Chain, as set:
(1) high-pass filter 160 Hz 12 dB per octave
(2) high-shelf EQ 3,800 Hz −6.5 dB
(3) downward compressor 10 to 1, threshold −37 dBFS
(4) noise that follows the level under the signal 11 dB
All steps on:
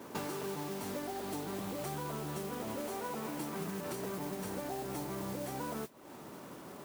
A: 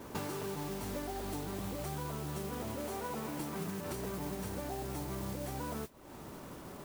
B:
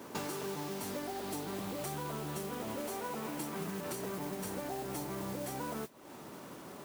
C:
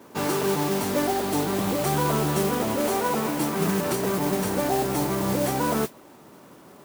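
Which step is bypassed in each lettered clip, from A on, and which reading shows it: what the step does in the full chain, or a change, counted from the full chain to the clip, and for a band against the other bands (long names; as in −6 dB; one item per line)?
1, 125 Hz band +3.5 dB
2, 8 kHz band +2.0 dB
3, average gain reduction 12.5 dB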